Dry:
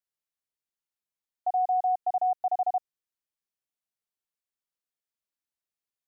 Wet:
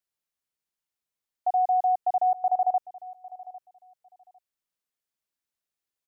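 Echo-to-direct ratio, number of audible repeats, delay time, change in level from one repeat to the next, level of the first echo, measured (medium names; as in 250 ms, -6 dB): -18.5 dB, 2, 802 ms, -14.0 dB, -18.5 dB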